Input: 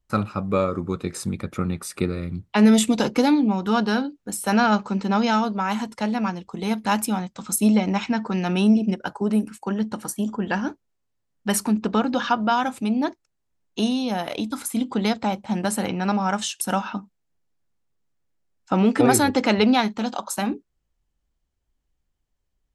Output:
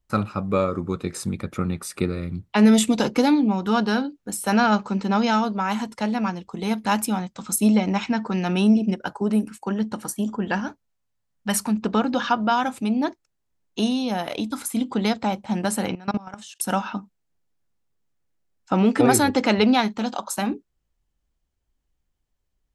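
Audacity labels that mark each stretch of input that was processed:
10.600000	11.830000	parametric band 350 Hz −11.5 dB 0.54 octaves
15.950000	16.600000	output level in coarse steps of 21 dB

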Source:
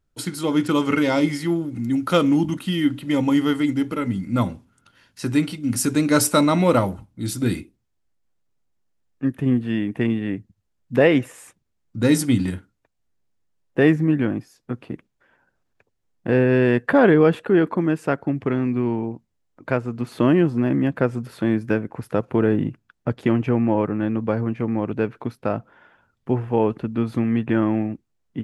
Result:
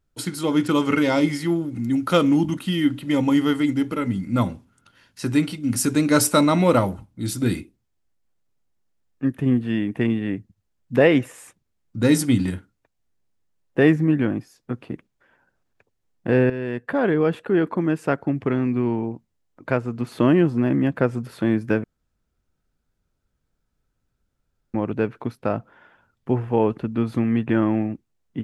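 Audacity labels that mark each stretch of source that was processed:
16.500000	18.110000	fade in, from −13 dB
21.840000	24.740000	fill with room tone

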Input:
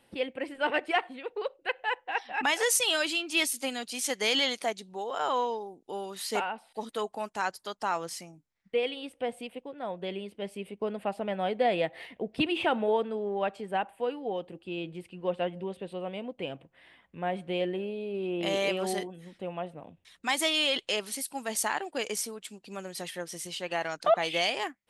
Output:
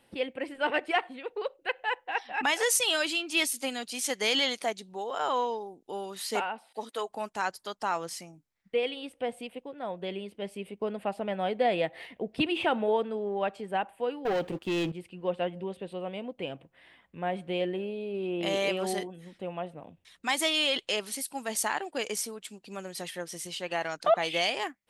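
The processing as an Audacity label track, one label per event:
6.340000	7.080000	high-pass filter 120 Hz → 410 Hz
14.250000	14.920000	leveller curve on the samples passes 3

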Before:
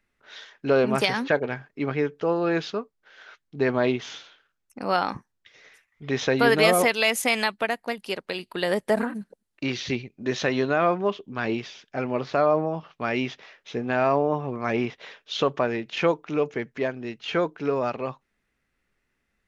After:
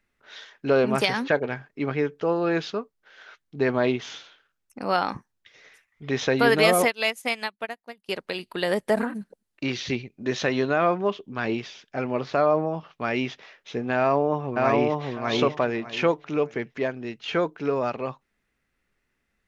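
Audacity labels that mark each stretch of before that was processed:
6.850000	8.090000	expander for the loud parts 2.5 to 1, over −33 dBFS
13.960000	15.040000	delay throw 600 ms, feedback 20%, level −1 dB

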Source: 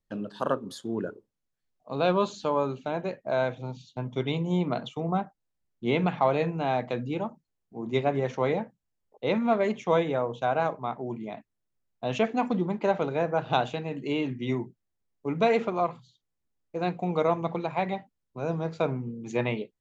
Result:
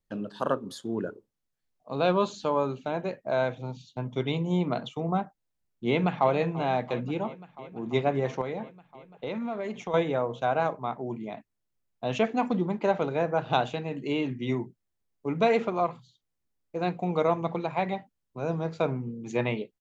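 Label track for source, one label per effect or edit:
5.880000	6.330000	delay throw 340 ms, feedback 85%, level −17.5 dB
8.410000	9.940000	downward compressor 4 to 1, threshold −30 dBFS

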